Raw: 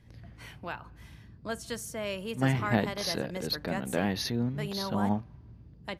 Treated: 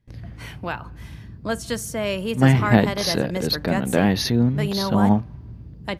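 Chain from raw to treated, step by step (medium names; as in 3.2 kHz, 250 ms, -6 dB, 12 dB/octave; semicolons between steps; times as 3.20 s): gate with hold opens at -45 dBFS; bass shelf 370 Hz +4 dB; trim +8.5 dB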